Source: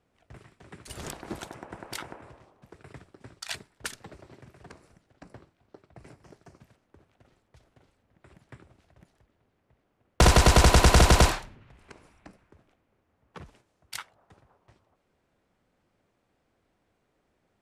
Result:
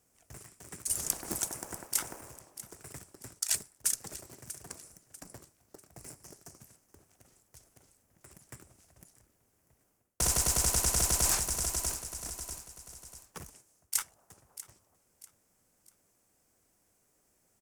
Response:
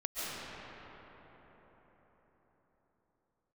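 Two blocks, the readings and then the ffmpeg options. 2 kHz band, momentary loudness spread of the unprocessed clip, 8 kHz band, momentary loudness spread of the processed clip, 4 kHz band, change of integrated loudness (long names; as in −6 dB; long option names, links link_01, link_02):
−12.5 dB, 22 LU, +4.5 dB, 23 LU, −7.0 dB, −9.0 dB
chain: -filter_complex "[0:a]asplit=2[link_01][link_02];[link_02]acrusher=bits=5:dc=4:mix=0:aa=0.000001,volume=-11.5dB[link_03];[link_01][link_03]amix=inputs=2:normalize=0,aemphasis=mode=production:type=cd,aecho=1:1:643|1286|1929:0.0891|0.033|0.0122,aexciter=amount=5.3:drive=8:freq=5500,areverse,acompressor=threshold=-18dB:ratio=10,areverse,highshelf=frequency=9800:gain=-9.5,volume=-3.5dB"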